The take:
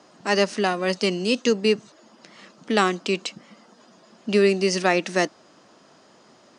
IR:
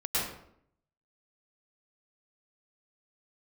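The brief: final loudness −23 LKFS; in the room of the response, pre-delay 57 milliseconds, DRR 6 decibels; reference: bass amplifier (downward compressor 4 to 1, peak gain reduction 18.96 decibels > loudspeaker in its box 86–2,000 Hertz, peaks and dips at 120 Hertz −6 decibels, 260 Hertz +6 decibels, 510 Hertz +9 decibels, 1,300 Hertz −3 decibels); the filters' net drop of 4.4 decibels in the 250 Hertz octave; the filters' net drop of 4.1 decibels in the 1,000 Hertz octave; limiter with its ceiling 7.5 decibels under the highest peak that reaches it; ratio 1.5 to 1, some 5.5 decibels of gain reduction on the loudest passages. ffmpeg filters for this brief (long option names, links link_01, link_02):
-filter_complex "[0:a]equalizer=frequency=250:width_type=o:gain=-9,equalizer=frequency=1000:width_type=o:gain=-5.5,acompressor=threshold=-33dB:ratio=1.5,alimiter=limit=-19dB:level=0:latency=1,asplit=2[link_01][link_02];[1:a]atrim=start_sample=2205,adelay=57[link_03];[link_02][link_03]afir=irnorm=-1:irlink=0,volume=-14.5dB[link_04];[link_01][link_04]amix=inputs=2:normalize=0,acompressor=threshold=-46dB:ratio=4,highpass=frequency=86:width=0.5412,highpass=frequency=86:width=1.3066,equalizer=frequency=120:width_type=q:width=4:gain=-6,equalizer=frequency=260:width_type=q:width=4:gain=6,equalizer=frequency=510:width_type=q:width=4:gain=9,equalizer=frequency=1300:width_type=q:width=4:gain=-3,lowpass=frequency=2000:width=0.5412,lowpass=frequency=2000:width=1.3066,volume=23.5dB"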